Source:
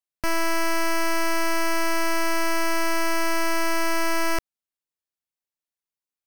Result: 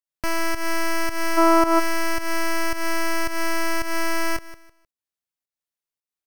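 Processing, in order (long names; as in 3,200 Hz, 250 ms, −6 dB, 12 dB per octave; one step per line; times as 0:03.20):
repeating echo 154 ms, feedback 26%, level −16.5 dB
gain on a spectral selection 0:01.38–0:01.79, 230–1,500 Hz +12 dB
fake sidechain pumping 110 BPM, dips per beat 1, −12 dB, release 202 ms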